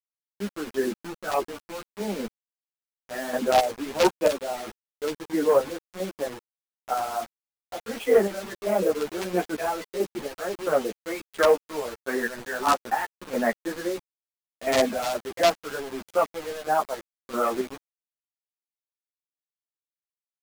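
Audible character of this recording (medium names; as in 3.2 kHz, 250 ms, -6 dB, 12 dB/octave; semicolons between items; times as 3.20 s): chopped level 1.5 Hz, depth 65%, duty 40%; a quantiser's noise floor 6-bit, dither none; a shimmering, thickened sound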